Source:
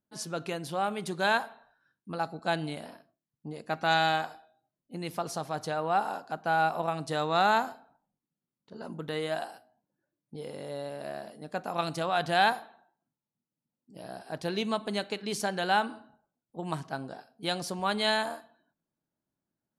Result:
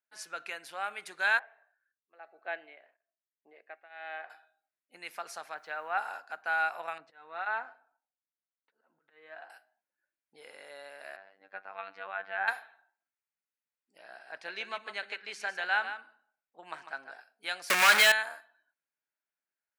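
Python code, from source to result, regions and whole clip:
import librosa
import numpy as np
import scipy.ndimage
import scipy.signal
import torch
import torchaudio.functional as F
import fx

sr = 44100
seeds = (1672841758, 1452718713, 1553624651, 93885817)

y = fx.chain(x, sr, fx.tremolo_shape(shape='triangle', hz=1.1, depth_pct=95),
    fx.cabinet(low_hz=350.0, low_slope=12, high_hz=2600.0, hz=(380.0, 630.0, 950.0, 1400.0, 2500.0), db=(6, 4, -8, -10, -4)), at=(1.39, 4.3))
y = fx.chain(y, sr, fx.lowpass(hz=3100.0, slope=12),
    fx.quant_dither(seeds[0], bits=12, dither='triangular'),
    fx.band_widen(depth_pct=40), at=(5.54, 5.98))
y = fx.chain(y, sr, fx.auto_swell(attack_ms=392.0),
    fx.spacing_loss(db_at_10k=36),
    fx.notch_comb(f0_hz=200.0), at=(6.98, 9.5))
y = fx.chain(y, sr, fx.env_lowpass_down(base_hz=1500.0, full_db=-21.5),
    fx.air_absorb(metres=330.0),
    fx.robotise(hz=97.0), at=(11.16, 12.48))
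y = fx.chain(y, sr, fx.air_absorb(metres=66.0),
    fx.echo_single(ms=149, db=-9.5), at=(13.98, 17.12))
y = fx.chain(y, sr, fx.zero_step(step_db=-35.5),
    fx.leveller(passes=5),
    fx.band_squash(depth_pct=100), at=(17.7, 18.12))
y = scipy.signal.sosfilt(scipy.signal.butter(2, 720.0, 'highpass', fs=sr, output='sos'), y)
y = fx.band_shelf(y, sr, hz=1900.0, db=9.5, octaves=1.1)
y = F.gain(torch.from_numpy(y), -6.0).numpy()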